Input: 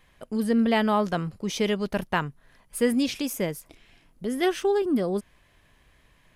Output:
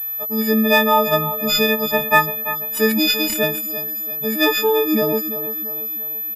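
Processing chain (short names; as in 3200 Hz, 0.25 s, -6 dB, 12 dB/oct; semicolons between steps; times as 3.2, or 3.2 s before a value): frequency quantiser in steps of 6 st; low shelf 110 Hz -11 dB; feedback echo 0.339 s, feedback 45%, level -12 dB; pulse-width modulation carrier 12000 Hz; gain +6.5 dB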